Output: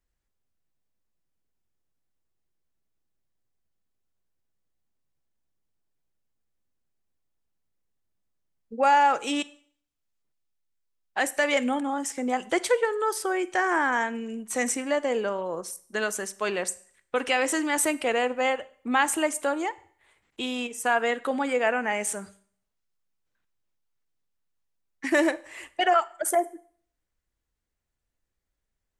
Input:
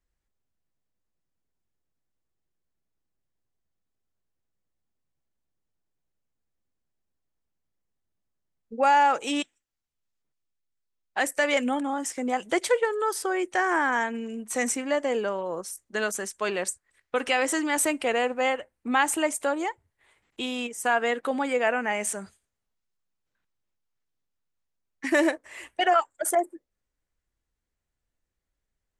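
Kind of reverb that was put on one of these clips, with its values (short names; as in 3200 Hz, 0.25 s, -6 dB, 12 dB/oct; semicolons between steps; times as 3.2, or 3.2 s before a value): Schroeder reverb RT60 0.53 s, combs from 32 ms, DRR 18 dB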